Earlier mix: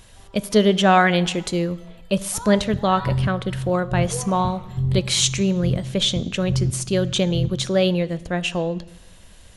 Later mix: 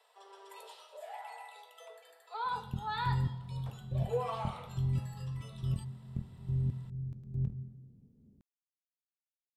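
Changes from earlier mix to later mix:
speech: muted
second sound −10.0 dB

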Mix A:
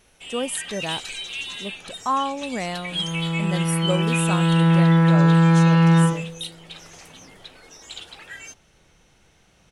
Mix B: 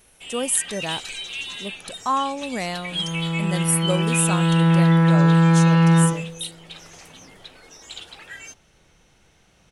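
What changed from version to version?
speech: add high-shelf EQ 4,900 Hz +10.5 dB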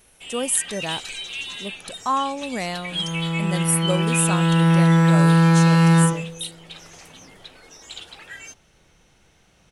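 second sound: remove high-frequency loss of the air 240 metres

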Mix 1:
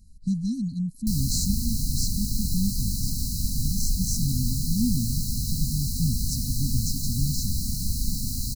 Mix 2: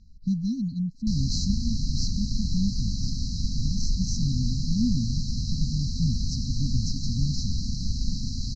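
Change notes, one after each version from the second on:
master: add Butterworth low-pass 6,000 Hz 48 dB per octave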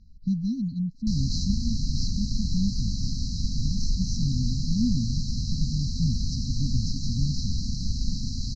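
speech: add high-frequency loss of the air 73 metres

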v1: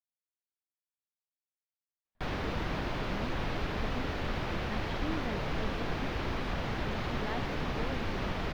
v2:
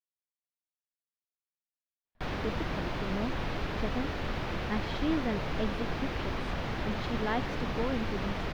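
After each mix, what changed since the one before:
speech +7.5 dB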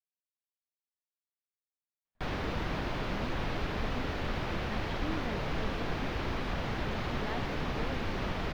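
speech −8.5 dB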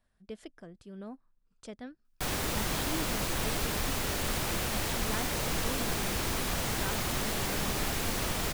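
speech: entry −2.15 s
master: remove high-frequency loss of the air 280 metres

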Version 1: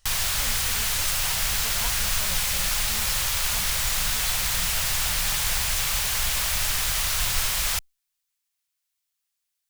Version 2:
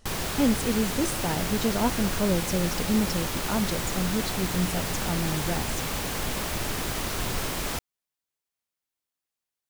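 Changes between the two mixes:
background −9.5 dB
master: remove guitar amp tone stack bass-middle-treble 10-0-10

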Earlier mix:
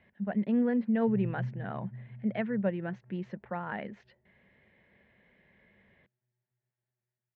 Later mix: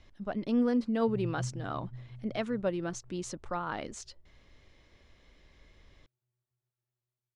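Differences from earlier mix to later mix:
background −4.5 dB
master: remove loudspeaker in its box 140–2,500 Hz, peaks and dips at 200 Hz +10 dB, 300 Hz −10 dB, 1,200 Hz −10 dB, 1,800 Hz +7 dB

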